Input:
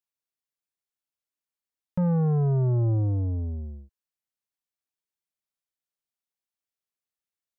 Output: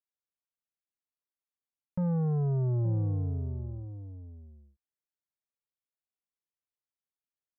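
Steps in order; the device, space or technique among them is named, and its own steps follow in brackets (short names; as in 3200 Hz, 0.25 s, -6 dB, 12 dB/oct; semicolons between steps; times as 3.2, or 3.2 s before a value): shout across a valley (air absorption 460 m; outdoor echo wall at 150 m, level -12 dB); gain -5 dB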